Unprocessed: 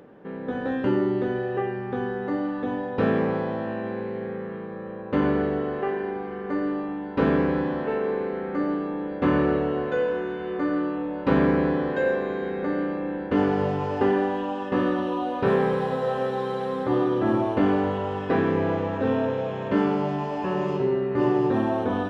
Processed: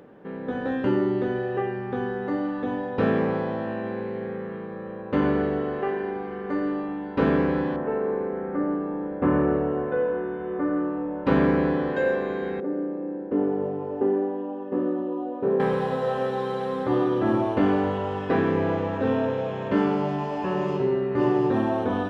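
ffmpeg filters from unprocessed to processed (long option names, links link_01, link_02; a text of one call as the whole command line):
ffmpeg -i in.wav -filter_complex "[0:a]asettb=1/sr,asplit=3[link_01][link_02][link_03];[link_01]atrim=end=7.764[link_04];[link_02]atrim=start=7.76:end=11.26,asetpts=PTS-STARTPTS,afade=type=in:duration=0.004:curve=qsin,afade=type=out:start_time=3.496:duration=0.004:curve=qsin,lowpass=1500[link_05];[link_03]atrim=start=11.256[link_06];[link_04][link_05]acrossfade=duration=0.004:curve1=hsin:curve2=qsin[link_07];[link_07][link_06]acrossfade=duration=0.004:curve1=qsin:curve2=hsin,asettb=1/sr,asplit=3[link_08][link_09][link_10];[link_08]atrim=end=12.604[link_11];[link_09]atrim=start=12.6:end=15.6,asetpts=PTS-STARTPTS,afade=type=in:duration=0.004:curve=qsin,afade=type=out:start_time=2.996:duration=0.004:curve=qsin,bandpass=frequency=360:width_type=q:width=1.3[link_12];[link_10]atrim=start=15.596[link_13];[link_11][link_12]acrossfade=duration=0.004:curve1=hsin:curve2=qsin[link_14];[link_14][link_13]acrossfade=duration=0.004:curve1=qsin:curve2=hsin" out.wav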